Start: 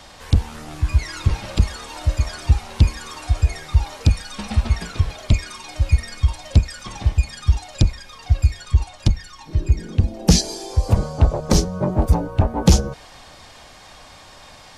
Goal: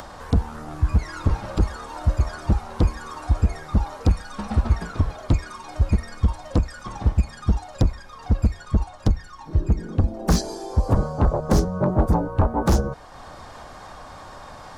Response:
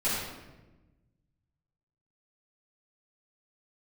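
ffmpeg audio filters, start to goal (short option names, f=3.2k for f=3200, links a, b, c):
-af "aeval=exprs='0.335*(abs(mod(val(0)/0.335+3,4)-2)-1)':c=same,highshelf=f=1.8k:t=q:w=1.5:g=-8.5,acompressor=mode=upward:threshold=-33dB:ratio=2.5"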